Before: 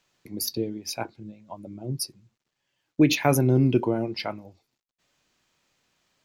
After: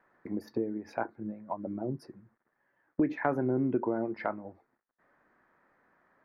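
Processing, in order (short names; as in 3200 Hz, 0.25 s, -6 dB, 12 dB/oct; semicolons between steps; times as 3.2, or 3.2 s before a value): EQ curve 140 Hz 0 dB, 210 Hz +8 dB, 1800 Hz +12 dB, 2800 Hz -16 dB, 11000 Hz -29 dB; compressor 2.5:1, threshold -29 dBFS, peak gain reduction 15.5 dB; gain -3 dB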